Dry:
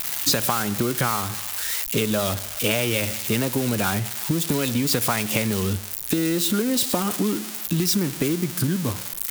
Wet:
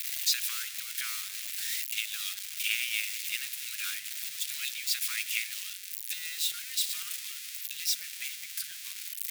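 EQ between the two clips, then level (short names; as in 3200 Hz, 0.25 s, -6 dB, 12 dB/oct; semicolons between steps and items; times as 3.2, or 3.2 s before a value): inverse Chebyshev high-pass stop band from 820 Hz, stop band 50 dB; high shelf 3700 Hz -8 dB; notch 3000 Hz, Q 26; 0.0 dB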